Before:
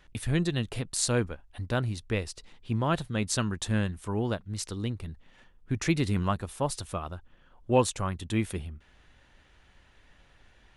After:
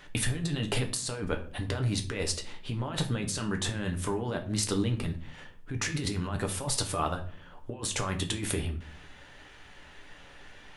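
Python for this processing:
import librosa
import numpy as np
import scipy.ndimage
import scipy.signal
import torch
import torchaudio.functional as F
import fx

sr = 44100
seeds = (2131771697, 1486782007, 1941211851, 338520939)

y = fx.low_shelf(x, sr, hz=130.0, db=-10.5)
y = fx.over_compress(y, sr, threshold_db=-37.0, ratio=-1.0)
y = fx.room_shoebox(y, sr, seeds[0], volume_m3=39.0, walls='mixed', distance_m=0.37)
y = y * librosa.db_to_amplitude(4.0)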